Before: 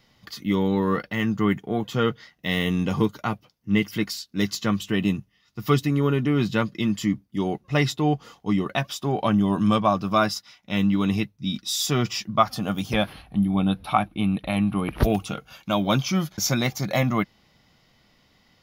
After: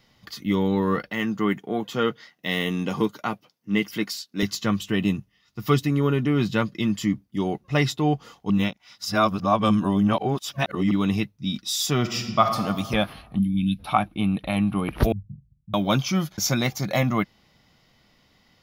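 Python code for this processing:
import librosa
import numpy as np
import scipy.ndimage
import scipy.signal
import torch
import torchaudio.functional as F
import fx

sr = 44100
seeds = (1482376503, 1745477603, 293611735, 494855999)

y = fx.highpass(x, sr, hz=190.0, slope=12, at=(1.1, 4.43))
y = fx.reverb_throw(y, sr, start_s=11.99, length_s=0.62, rt60_s=1.5, drr_db=5.0)
y = fx.ellip_bandstop(y, sr, low_hz=260.0, high_hz=2300.0, order=3, stop_db=40, at=(13.38, 13.78), fade=0.02)
y = fx.cheby2_lowpass(y, sr, hz=640.0, order=4, stop_db=70, at=(15.12, 15.74))
y = fx.edit(y, sr, fx.reverse_span(start_s=8.5, length_s=2.41), tone=tone)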